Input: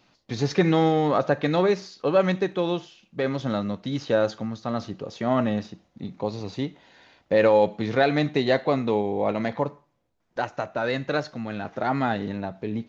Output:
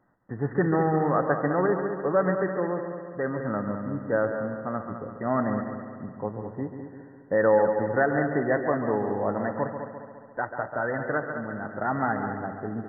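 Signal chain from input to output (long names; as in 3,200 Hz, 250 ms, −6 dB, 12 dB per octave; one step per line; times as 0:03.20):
dynamic equaliser 1,400 Hz, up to +5 dB, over −40 dBFS, Q 1.6
linear-phase brick-wall low-pass 2,000 Hz
echo machine with several playback heads 69 ms, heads second and third, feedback 57%, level −9 dB
level −4 dB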